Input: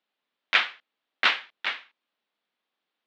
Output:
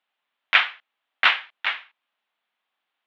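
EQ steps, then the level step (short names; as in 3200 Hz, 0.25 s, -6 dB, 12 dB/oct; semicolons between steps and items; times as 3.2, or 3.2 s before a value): band shelf 1500 Hz +9.5 dB 2.7 oct; -5.0 dB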